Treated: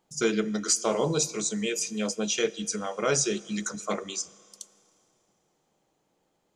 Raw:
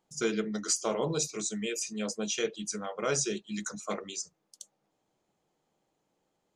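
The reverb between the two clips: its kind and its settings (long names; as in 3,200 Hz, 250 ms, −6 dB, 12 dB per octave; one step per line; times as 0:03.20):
four-comb reverb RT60 2.7 s, combs from 27 ms, DRR 20 dB
level +4.5 dB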